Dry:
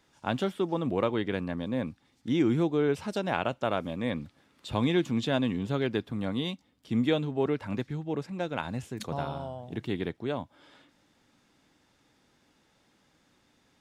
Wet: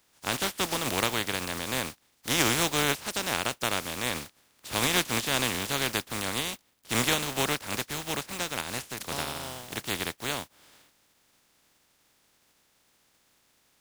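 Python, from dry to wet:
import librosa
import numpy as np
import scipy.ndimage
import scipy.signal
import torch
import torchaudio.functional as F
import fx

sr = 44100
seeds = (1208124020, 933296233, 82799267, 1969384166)

y = fx.spec_flatten(x, sr, power=0.29)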